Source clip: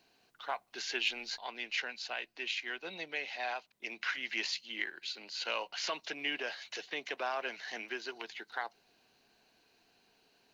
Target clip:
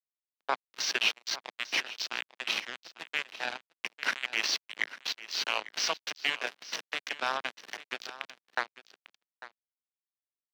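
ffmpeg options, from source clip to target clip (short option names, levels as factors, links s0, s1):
-filter_complex "[0:a]highpass=f=110:p=1,afftfilt=real='re*gte(hypot(re,im),0.00141)':imag='im*gte(hypot(re,im),0.00141)':win_size=1024:overlap=0.75,lowpass=f=5800:t=q:w=11,asplit=2[s0][s1];[s1]alimiter=limit=0.0794:level=0:latency=1:release=29,volume=0.708[s2];[s0][s2]amix=inputs=2:normalize=0,acrusher=bits=3:mix=0:aa=0.5,acrossover=split=200 4200:gain=0.0708 1 0.0891[s3][s4][s5];[s3][s4][s5]amix=inputs=3:normalize=0,asplit=2[s6][s7];[s7]aecho=0:1:848:0.158[s8];[s6][s8]amix=inputs=2:normalize=0,volume=1.26"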